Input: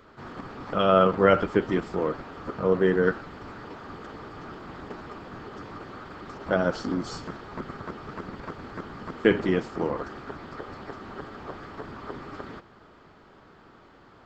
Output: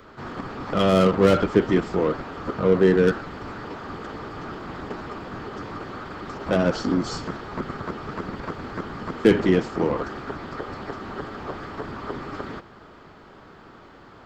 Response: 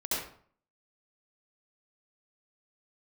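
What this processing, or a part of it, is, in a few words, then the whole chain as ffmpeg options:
one-band saturation: -filter_complex "[0:a]acrossover=split=460|3400[link_01][link_02][link_03];[link_02]asoftclip=type=tanh:threshold=-28.5dB[link_04];[link_01][link_04][link_03]amix=inputs=3:normalize=0,volume=6dB"

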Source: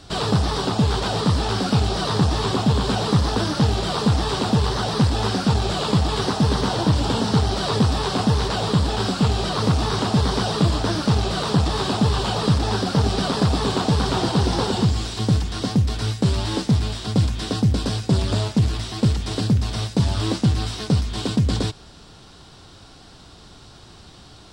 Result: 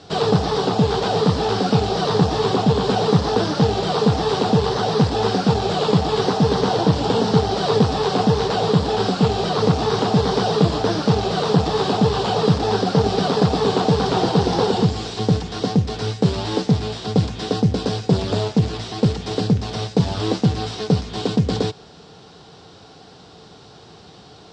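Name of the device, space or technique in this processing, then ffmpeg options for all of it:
car door speaker: -af "highpass=100,equalizer=frequency=170:width_type=q:width=4:gain=5,equalizer=frequency=450:width_type=q:width=4:gain=10,equalizer=frequency=760:width_type=q:width=4:gain=6,lowpass=frequency=6900:width=0.5412,lowpass=frequency=6900:width=1.3066"

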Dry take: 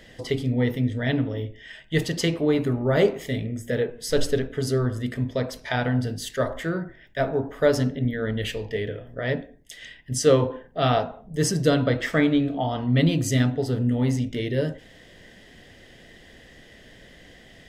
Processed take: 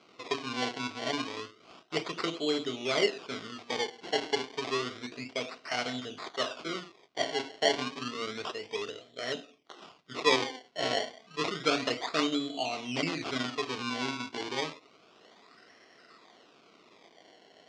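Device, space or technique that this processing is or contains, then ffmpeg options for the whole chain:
circuit-bent sampling toy: -af "acrusher=samples=24:mix=1:aa=0.000001:lfo=1:lforange=24:lforate=0.3,highpass=510,equalizer=frequency=540:width_type=q:width=4:gain=-10,equalizer=frequency=880:width_type=q:width=4:gain=-9,equalizer=frequency=1700:width_type=q:width=4:gain=-10,lowpass=frequency=5400:width=0.5412,lowpass=frequency=5400:width=1.3066"

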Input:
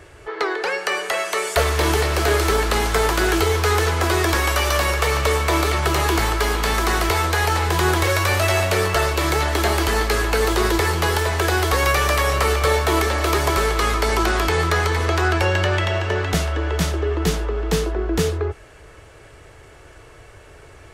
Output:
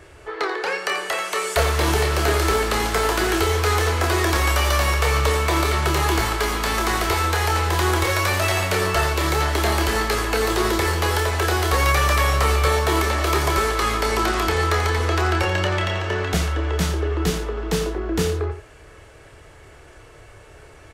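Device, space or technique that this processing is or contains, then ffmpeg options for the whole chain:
slapback doubling: -filter_complex "[0:a]asplit=3[link_01][link_02][link_03];[link_02]adelay=28,volume=-7dB[link_04];[link_03]adelay=87,volume=-11dB[link_05];[link_01][link_04][link_05]amix=inputs=3:normalize=0,volume=-2dB"

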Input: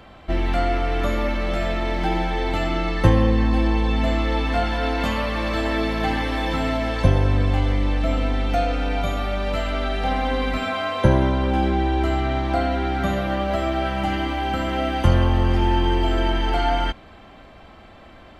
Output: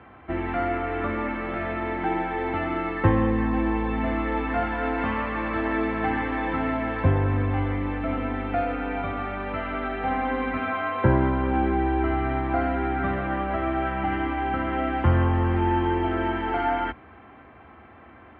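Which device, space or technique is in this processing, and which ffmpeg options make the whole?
bass cabinet: -af "highpass=frequency=72:width=0.5412,highpass=frequency=72:width=1.3066,equalizer=frequency=110:width_type=q:width=4:gain=-4,equalizer=frequency=180:width_type=q:width=4:gain=-9,equalizer=frequency=590:width_type=q:width=4:gain=-9,lowpass=frequency=2200:width=0.5412,lowpass=frequency=2200:width=1.3066"

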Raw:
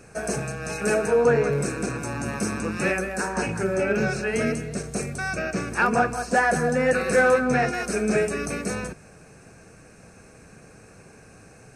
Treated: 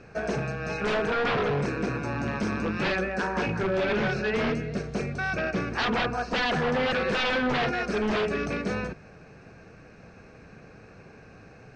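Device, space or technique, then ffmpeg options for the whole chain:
synthesiser wavefolder: -af "aeval=exprs='0.0944*(abs(mod(val(0)/0.0944+3,4)-2)-1)':channel_layout=same,lowpass=frequency=4600:width=0.5412,lowpass=frequency=4600:width=1.3066"

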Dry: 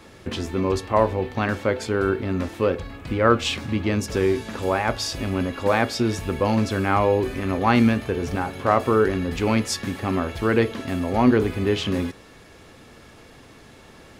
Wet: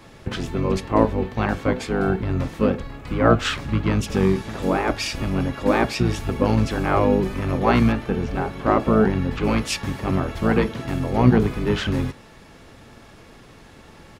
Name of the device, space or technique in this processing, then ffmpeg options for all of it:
octave pedal: -filter_complex "[0:a]asettb=1/sr,asplit=3[link_01][link_02][link_03];[link_01]atrim=end=7.924[link_04];[link_02]atrim=start=7.92:end=9.44,asetpts=PTS-STARTPTS,afade=type=in:duration=0.004:curve=qsin,afade=type=out:start_time=1.516:duration=0.004:curve=qsin,acrossover=split=4800[link_05][link_06];[link_06]acompressor=threshold=-55dB:ratio=4:attack=1:release=60[link_07];[link_05][link_07]amix=inputs=2:normalize=0[link_08];[link_03]atrim=start=9.436[link_09];[link_04][link_08]acrossfade=duration=0.004:curve1=hsin:curve2=qsin[link_10];[link_10][link_09]acrossfade=duration=0.004:curve1=qsin:curve2=hsin,asplit=2[link_11][link_12];[link_12]asetrate=22050,aresample=44100,atempo=2,volume=0dB[link_13];[link_11][link_13]amix=inputs=2:normalize=0,volume=-1.5dB"

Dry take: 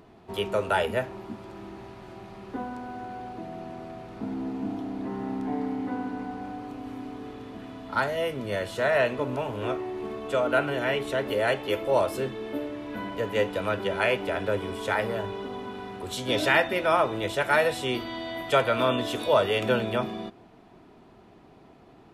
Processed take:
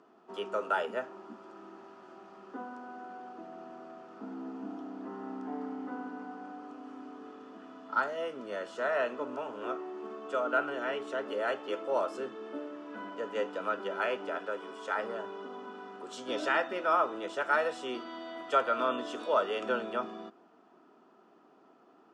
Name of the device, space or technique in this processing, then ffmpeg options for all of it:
television speaker: -filter_complex "[0:a]highpass=frequency=230:width=0.5412,highpass=frequency=230:width=1.3066,equalizer=frequency=1300:width_type=q:width=4:gain=9,equalizer=frequency=2200:width_type=q:width=4:gain=-8,equalizer=frequency=3900:width_type=q:width=4:gain=-8,lowpass=frequency=7400:width=0.5412,lowpass=frequency=7400:width=1.3066,asettb=1/sr,asplit=3[link_01][link_02][link_03];[link_01]atrim=end=14.384[link_04];[link_02]atrim=start=14.38:end=14.96,asetpts=PTS-STARTPTS,afade=type=in:duration=0.004:curve=qsin,afade=type=out:start_time=0.576:duration=0.004:curve=qsin,lowshelf=frequency=330:gain=-8.5[link_05];[link_03]atrim=start=14.956[link_06];[link_04][link_05]acrossfade=duration=0.004:curve1=hsin:curve2=qsin[link_07];[link_07][link_06]acrossfade=duration=0.004:curve1=qsin:curve2=hsin,volume=-7.5dB"

